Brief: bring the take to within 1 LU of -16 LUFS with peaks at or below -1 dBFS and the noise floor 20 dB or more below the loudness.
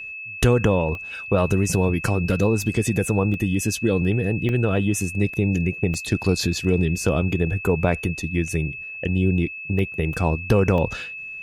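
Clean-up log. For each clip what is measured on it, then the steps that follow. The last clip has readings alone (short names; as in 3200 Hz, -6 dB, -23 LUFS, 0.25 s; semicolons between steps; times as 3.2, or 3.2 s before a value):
dropouts 7; longest dropout 1.1 ms; steady tone 2600 Hz; tone level -32 dBFS; loudness -22.5 LUFS; peak -6.0 dBFS; loudness target -16.0 LUFS
-> interpolate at 0.95/3.34/4.49/5.94/8.48/9.79/10.78, 1.1 ms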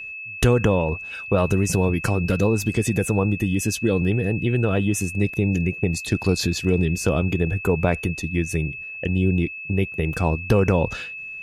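dropouts 0; steady tone 2600 Hz; tone level -32 dBFS
-> notch 2600 Hz, Q 30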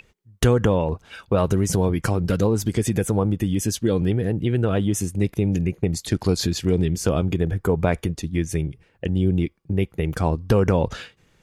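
steady tone none; loudness -22.5 LUFS; peak -6.0 dBFS; loudness target -16.0 LUFS
-> gain +6.5 dB; limiter -1 dBFS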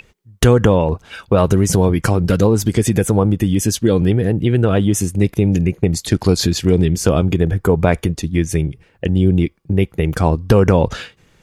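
loudness -16.0 LUFS; peak -1.0 dBFS; noise floor -55 dBFS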